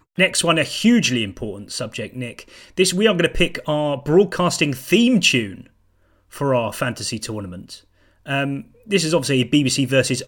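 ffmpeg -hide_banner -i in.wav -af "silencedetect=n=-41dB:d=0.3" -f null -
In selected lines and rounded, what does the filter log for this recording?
silence_start: 5.67
silence_end: 6.32 | silence_duration: 0.65
silence_start: 7.80
silence_end: 8.26 | silence_duration: 0.46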